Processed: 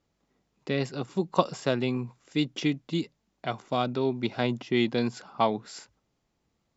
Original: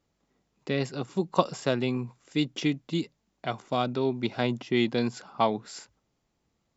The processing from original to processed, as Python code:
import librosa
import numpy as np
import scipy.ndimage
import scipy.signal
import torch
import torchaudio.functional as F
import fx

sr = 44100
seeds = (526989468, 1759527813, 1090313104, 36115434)

y = scipy.signal.sosfilt(scipy.signal.butter(2, 8200.0, 'lowpass', fs=sr, output='sos'), x)